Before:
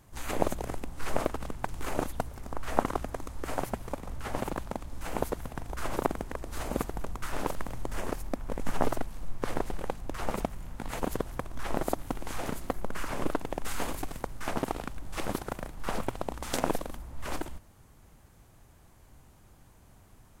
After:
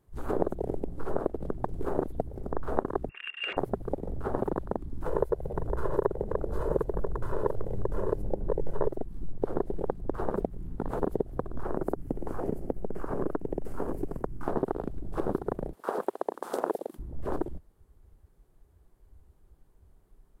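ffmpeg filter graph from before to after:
-filter_complex "[0:a]asettb=1/sr,asplit=3[a][b][c];[a]atrim=end=3.094[d];[b]atrim=start=3.09:end=3.57,asetpts=PTS-STARTPTS,afade=t=in:d=0.004:c=qsin,afade=t=out:st=0.476:d=0.004:c=qsin,highshelf=f=2.1k:g=5,bandreject=f=710:w=5.2,lowpass=f=2.4k:t=q:w=0.5098,lowpass=f=2.4k:t=q:w=0.6013,lowpass=f=2.4k:t=q:w=0.9,lowpass=f=2.4k:t=q:w=2.563,afreqshift=-2800[e];[c]atrim=start=3.566[f];[d][e]acrossfade=d=0.004:c1=hsin:c2=qsin[g];[g][f]acrossfade=d=0.004:c1=qsin:c2=hsin,asettb=1/sr,asplit=3[h][i][j];[h]atrim=end=5.064[k];[i]atrim=start=5.06:end=8.88,asetpts=PTS-STARTPTS,afade=t=in:d=0.004:c=qsin,afade=t=out:st=3.816:d=0.004:c=qsin,aecho=1:1:2:0.92,atrim=end_sample=168462,asplit=5[l][m][n][o][p];[m]adelay=177,afreqshift=100,volume=-17.5dB[q];[n]adelay=354,afreqshift=200,volume=-23.9dB[r];[o]adelay=531,afreqshift=300,volume=-30.3dB[s];[p]adelay=708,afreqshift=400,volume=-36.6dB[t];[l][q][r][s][t]amix=inputs=5:normalize=0,atrim=end_sample=168462[u];[j]atrim=start=8.876[v];[k][u]acrossfade=d=0.004:c1=hsin:c2=qsin[w];[w][v]acrossfade=d=0.004:c1=qsin:c2=hsin,asettb=1/sr,asplit=3[x][y][z];[x]atrim=end=11.634[aa];[y]atrim=start=11.63:end=14.43,asetpts=PTS-STARTPTS,afade=t=in:d=0.004:c=qsin,afade=t=out:st=2.796:d=0.004:c=qsin,equalizer=f=3.7k:w=4:g=-11,acrossover=split=380|1200[ab][ac][ad];[ab]acompressor=threshold=-30dB:ratio=4[ae];[ac]acompressor=threshold=-41dB:ratio=4[af];[ad]acompressor=threshold=-42dB:ratio=4[ag];[ae][af][ag]amix=inputs=3:normalize=0[ah];[z]atrim=start=14.426[ai];[aa][ah]acrossfade=d=0.004:c1=hsin:c2=qsin[aj];[aj][ai]acrossfade=d=0.004:c1=qsin:c2=hsin,asettb=1/sr,asplit=3[ak][al][am];[ak]atrim=end=15.734[an];[al]atrim=start=15.73:end=16.99,asetpts=PTS-STARTPTS,afade=t=in:d=0.004:c=qsin,afade=t=out:st=1.256:d=0.004:c=qsin,highpass=400,highshelf=f=3k:g=7.5[ao];[am]atrim=start=16.986[ap];[an][ao]acrossfade=d=0.004:c1=hsin:c2=qsin[aq];[aq][ap]acrossfade=d=0.004:c1=qsin:c2=hsin,equalizer=f=160:t=o:w=0.67:g=4,equalizer=f=400:t=o:w=0.67:g=11,equalizer=f=2.5k:t=o:w=0.67:g=-4,equalizer=f=6.3k:t=o:w=0.67:g=-6,acompressor=threshold=-28dB:ratio=3,afwtdn=0.0141,volume=3dB"

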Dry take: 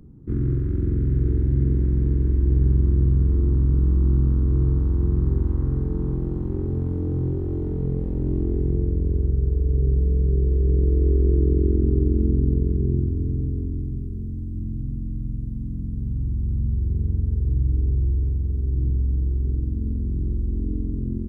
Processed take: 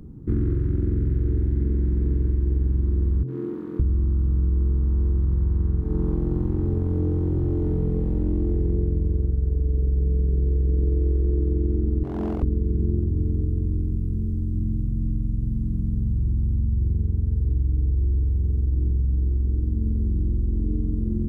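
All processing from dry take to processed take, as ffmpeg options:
-filter_complex "[0:a]asettb=1/sr,asplit=3[a][b][c];[a]atrim=end=3.234[d];[b]atrim=start=3.23:end=5.83,asetpts=PTS-STARTPTS,afade=t=in:d=0.004:c=qsin,afade=t=out:st=2.596:d=0.004:c=qsin,bass=f=250:g=2,treble=f=4k:g=-5,acrossover=split=260|780[e][f][g];[g]adelay=50[h];[e]adelay=560[i];[i][f][h]amix=inputs=3:normalize=0,atrim=end_sample=114660[j];[c]atrim=start=5.826[k];[d][j]acrossfade=d=0.004:c1=hsin:c2=qsin[l];[l][k]acrossfade=d=0.004:c1=qsin:c2=hsin,asettb=1/sr,asplit=3[m][n][o];[m]atrim=end=12.034[p];[n]atrim=start=12.03:end=12.43,asetpts=PTS-STARTPTS,afade=t=in:d=0.004:c=qsin,afade=t=out:st=0.396:d=0.004:c=qsin,highpass=f=280:p=1,asoftclip=type=hard:threshold=-27dB[q];[o]atrim=start=12.426[r];[p][q]acrossfade=d=0.004:c1=hsin:c2=qsin[s];[s][r]acrossfade=d=0.004:c1=qsin:c2=hsin,bandreject=f=131:t=h:w=4,bandreject=f=262:t=h:w=4,bandreject=f=393:t=h:w=4,bandreject=f=524:t=h:w=4,bandreject=f=655:t=h:w=4,acompressor=threshold=-24dB:ratio=6,volume=5.5dB"

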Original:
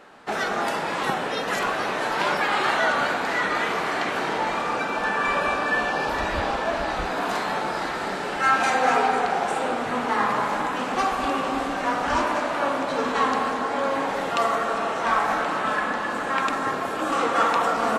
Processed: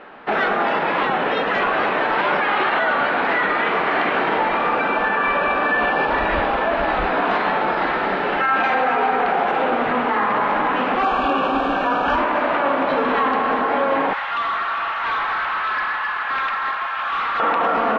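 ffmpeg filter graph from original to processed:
-filter_complex "[0:a]asettb=1/sr,asplit=3[a][b][c];[a]atrim=end=11.034[d];[b]atrim=start=11.03:end=12.16,asetpts=PTS-STARTPTS,afade=t=in:d=0.004:c=qsin,afade=t=out:st=1.126:d=0.004:c=qsin,asuperstop=centerf=2000:order=8:qfactor=4.6,equalizer=f=7.7k:t=o:w=0.91:g=11.5[e];[c]atrim=start=12.156[f];[d][e]acrossfade=d=0.004:c1=hsin:c2=qsin[g];[g][f]acrossfade=d=0.004:c1=qsin:c2=hsin,asettb=1/sr,asplit=3[h][i][j];[h]atrim=end=14.134[k];[i]atrim=start=14.13:end=17.4,asetpts=PTS-STARTPTS,afade=t=in:d=0.004:c=qsin,afade=t=out:st=3.266:d=0.004:c=qsin,highpass=f=990:w=0.5412,highpass=f=990:w=1.3066,volume=27.5dB,asoftclip=hard,volume=-27.5dB[l];[j]atrim=start=17.396[m];[k][l]acrossfade=d=0.004:c1=hsin:c2=qsin[n];[n][m]acrossfade=d=0.004:c1=qsin:c2=hsin,lowpass=f=3.1k:w=0.5412,lowpass=f=3.1k:w=1.3066,equalizer=f=99:t=o:w=1.3:g=-7.5,alimiter=limit=-18.5dB:level=0:latency=1:release=41,volume=8dB"

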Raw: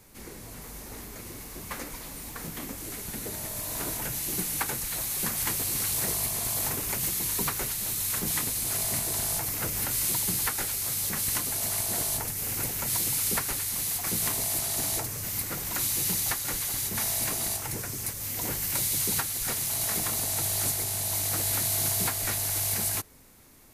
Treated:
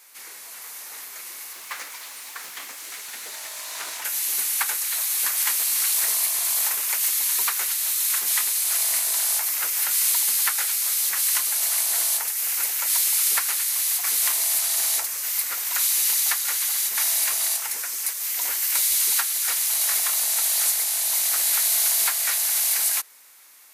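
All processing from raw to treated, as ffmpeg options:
-filter_complex "[0:a]asettb=1/sr,asplit=3[a][b][c];[a]atrim=end=1.534[d];[b]atrim=start=1.53:end=4.05,asetpts=PTS-STARTPTS,afade=t=in:d=0.004:c=qsin,afade=t=out:st=2.516:d=0.004:c=qsin,highshelf=f=8.1k:g=-4.5,acrusher=bits=3:mode=log:mix=0:aa=0.000001,acrossover=split=8000[e][f];[f]acompressor=threshold=-45dB:ratio=4:attack=1:release=60[g];[e][g]amix=inputs=2:normalize=0[h];[c]atrim=start=4.046[i];[d][h]acrossfade=d=0.004:c1=hsin:c2=qsin[j];[j][i]acrossfade=d=0.004:c1=qsin:c2=hsin,highpass=1.2k,acontrast=80"

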